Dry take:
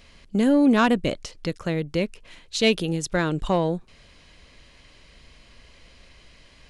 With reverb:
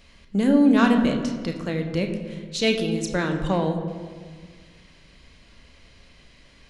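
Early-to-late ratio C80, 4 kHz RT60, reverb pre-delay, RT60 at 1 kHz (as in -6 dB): 8.0 dB, 1.2 s, 3 ms, 1.6 s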